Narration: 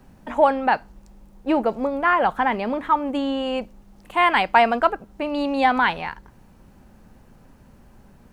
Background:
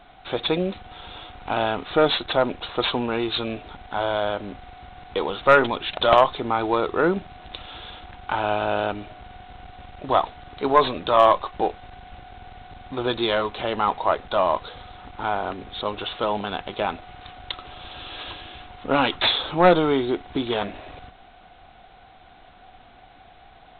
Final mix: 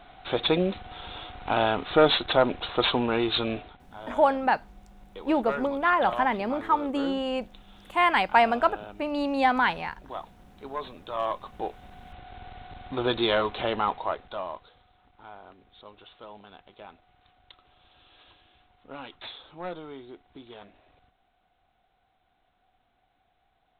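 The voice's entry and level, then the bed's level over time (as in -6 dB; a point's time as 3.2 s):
3.80 s, -4.0 dB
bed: 3.59 s -0.5 dB
3.83 s -17.5 dB
10.9 s -17.5 dB
12.37 s -1.5 dB
13.68 s -1.5 dB
14.86 s -21 dB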